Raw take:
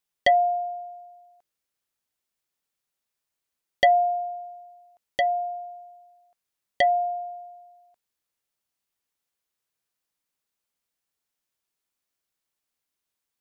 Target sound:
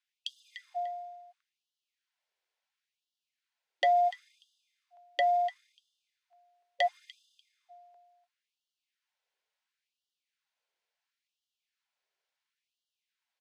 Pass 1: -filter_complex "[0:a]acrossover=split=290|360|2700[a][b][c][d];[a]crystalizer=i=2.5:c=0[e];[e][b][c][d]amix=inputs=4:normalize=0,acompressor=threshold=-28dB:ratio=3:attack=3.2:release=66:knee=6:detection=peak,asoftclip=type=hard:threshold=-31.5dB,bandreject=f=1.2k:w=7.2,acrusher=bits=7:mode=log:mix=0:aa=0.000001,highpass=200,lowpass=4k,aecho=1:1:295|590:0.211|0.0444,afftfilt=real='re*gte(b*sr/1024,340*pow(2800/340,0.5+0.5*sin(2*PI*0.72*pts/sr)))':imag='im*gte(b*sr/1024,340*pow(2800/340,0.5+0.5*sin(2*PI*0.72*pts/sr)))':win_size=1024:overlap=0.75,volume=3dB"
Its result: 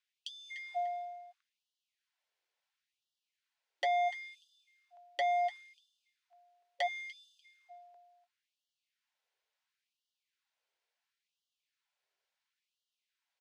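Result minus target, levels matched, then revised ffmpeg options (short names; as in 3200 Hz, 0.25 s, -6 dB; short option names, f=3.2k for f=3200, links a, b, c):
hard clip: distortion +15 dB
-filter_complex "[0:a]acrossover=split=290|360|2700[a][b][c][d];[a]crystalizer=i=2.5:c=0[e];[e][b][c][d]amix=inputs=4:normalize=0,acompressor=threshold=-28dB:ratio=3:attack=3.2:release=66:knee=6:detection=peak,asoftclip=type=hard:threshold=-22.5dB,bandreject=f=1.2k:w=7.2,acrusher=bits=7:mode=log:mix=0:aa=0.000001,highpass=200,lowpass=4k,aecho=1:1:295|590:0.211|0.0444,afftfilt=real='re*gte(b*sr/1024,340*pow(2800/340,0.5+0.5*sin(2*PI*0.72*pts/sr)))':imag='im*gte(b*sr/1024,340*pow(2800/340,0.5+0.5*sin(2*PI*0.72*pts/sr)))':win_size=1024:overlap=0.75,volume=3dB"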